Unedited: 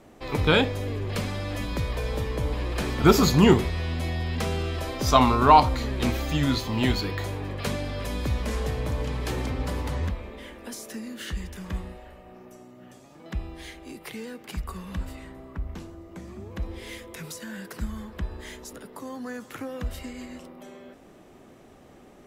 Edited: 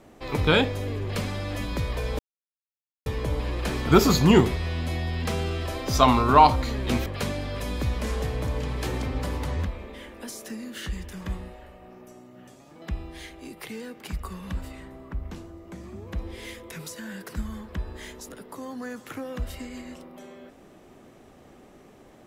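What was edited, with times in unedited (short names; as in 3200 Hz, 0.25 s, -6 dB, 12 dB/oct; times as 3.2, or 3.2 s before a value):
2.19 insert silence 0.87 s
6.19–7.5 cut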